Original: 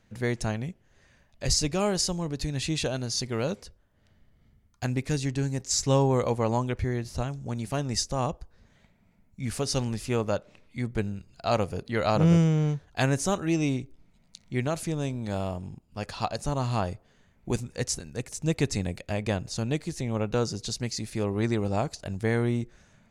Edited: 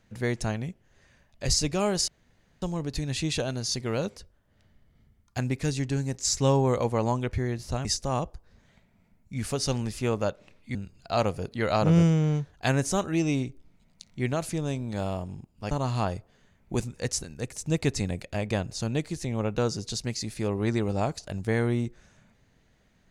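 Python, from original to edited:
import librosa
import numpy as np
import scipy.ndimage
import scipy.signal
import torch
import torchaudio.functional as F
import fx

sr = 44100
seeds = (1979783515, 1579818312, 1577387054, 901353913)

y = fx.edit(x, sr, fx.insert_room_tone(at_s=2.08, length_s=0.54),
    fx.cut(start_s=7.31, length_s=0.61),
    fx.cut(start_s=10.82, length_s=0.27),
    fx.cut(start_s=16.05, length_s=0.42), tone=tone)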